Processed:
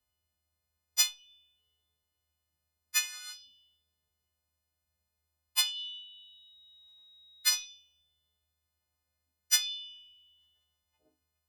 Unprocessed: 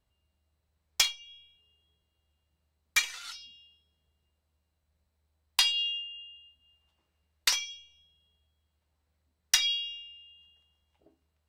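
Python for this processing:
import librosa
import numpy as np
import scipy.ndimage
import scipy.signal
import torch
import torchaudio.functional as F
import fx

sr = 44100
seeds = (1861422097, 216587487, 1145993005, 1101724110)

y = fx.freq_snap(x, sr, grid_st=3)
y = fx.dmg_tone(y, sr, hz=3800.0, level_db=-47.0, at=(5.75, 7.64), fade=0.02)
y = y * 10.0 ** (-9.0 / 20.0)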